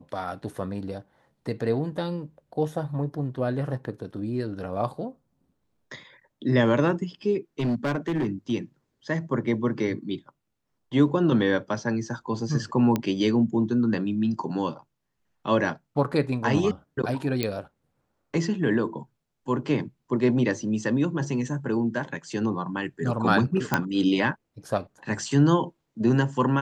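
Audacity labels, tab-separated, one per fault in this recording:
7.590000	8.520000	clipped -21.5 dBFS
12.960000	12.960000	pop -12 dBFS
17.430000	17.430000	pop -11 dBFS
23.740000	23.740000	pop -7 dBFS

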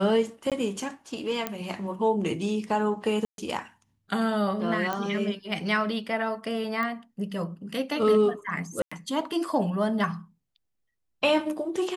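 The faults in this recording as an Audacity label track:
0.500000	0.520000	dropout 17 ms
1.470000	1.470000	pop -13 dBFS
3.250000	3.380000	dropout 132 ms
4.930000	4.930000	pop -16 dBFS
6.830000	6.830000	pop -19 dBFS
8.820000	8.910000	dropout 95 ms

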